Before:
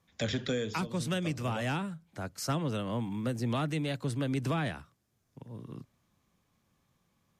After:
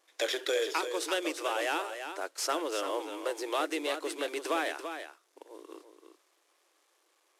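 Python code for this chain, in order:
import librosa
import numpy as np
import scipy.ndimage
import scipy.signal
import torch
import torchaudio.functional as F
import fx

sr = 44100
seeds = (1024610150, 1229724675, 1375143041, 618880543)

p1 = fx.cvsd(x, sr, bps=64000)
p2 = fx.brickwall_highpass(p1, sr, low_hz=300.0)
p3 = p2 + fx.echo_single(p2, sr, ms=338, db=-8.5, dry=0)
y = p3 * 10.0 ** (4.0 / 20.0)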